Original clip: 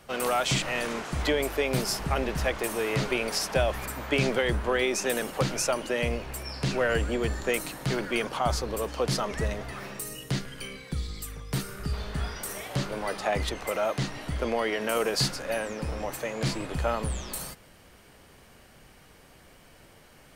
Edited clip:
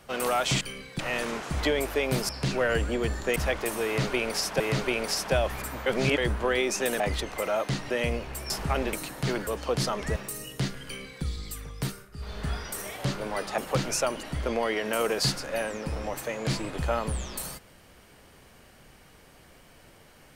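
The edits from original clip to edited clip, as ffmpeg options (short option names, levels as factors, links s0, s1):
-filter_complex "[0:a]asplit=18[s0][s1][s2][s3][s4][s5][s6][s7][s8][s9][s10][s11][s12][s13][s14][s15][s16][s17];[s0]atrim=end=0.612[s18];[s1]atrim=start=10.558:end=10.942[s19];[s2]atrim=start=0.608:end=1.912[s20];[s3]atrim=start=6.488:end=7.562[s21];[s4]atrim=start=2.338:end=3.582[s22];[s5]atrim=start=2.838:end=4.102[s23];[s6]atrim=start=4.098:end=4.422,asetpts=PTS-STARTPTS,areverse[s24];[s7]atrim=start=4.418:end=5.242[s25];[s8]atrim=start=13.288:end=14.192[s26];[s9]atrim=start=5.888:end=6.492[s27];[s10]atrim=start=1.908:end=2.342[s28];[s11]atrim=start=7.558:end=8.102[s29];[s12]atrim=start=8.778:end=9.472[s30];[s13]atrim=start=9.868:end=11.81,asetpts=PTS-STARTPTS,afade=t=out:st=1.642:d=0.3:silence=0.141254[s31];[s14]atrim=start=11.81:end=11.82,asetpts=PTS-STARTPTS,volume=0.141[s32];[s15]atrim=start=11.82:end=13.292,asetpts=PTS-STARTPTS,afade=t=in:d=0.3:silence=0.141254[s33];[s16]atrim=start=5.238:end=5.892[s34];[s17]atrim=start=14.188[s35];[s18][s19]acrossfade=d=0.004:c1=hsin:c2=hsin[s36];[s36][s20]acrossfade=d=0.004:c1=hsin:c2=hsin[s37];[s37][s21]acrossfade=d=0.004:c1=hsin:c2=hsin[s38];[s38][s22]acrossfade=d=0.004:c1=hsin:c2=hsin[s39];[s39][s23]acrossfade=d=0.004:c1=hsin:c2=hsin[s40];[s40][s24]acrossfade=d=0.004:c1=hsin:c2=hsin[s41];[s41][s25]acrossfade=d=0.004:c1=hsin:c2=hsin[s42];[s42][s26]acrossfade=d=0.004:c1=hsin:c2=hsin[s43];[s43][s27]acrossfade=d=0.004:c1=hsin:c2=hsin[s44];[s44][s28]acrossfade=d=0.004:c1=hsin:c2=hsin[s45];[s45][s29]acrossfade=d=0.004:c1=hsin:c2=hsin[s46];[s46][s30]acrossfade=d=0.004:c1=hsin:c2=hsin[s47];[s31][s32][s33]concat=n=3:v=0:a=1[s48];[s47][s48]acrossfade=d=0.004:c1=hsin:c2=hsin[s49];[s49][s34]acrossfade=d=0.004:c1=hsin:c2=hsin[s50];[s50][s35]acrossfade=d=0.004:c1=hsin:c2=hsin"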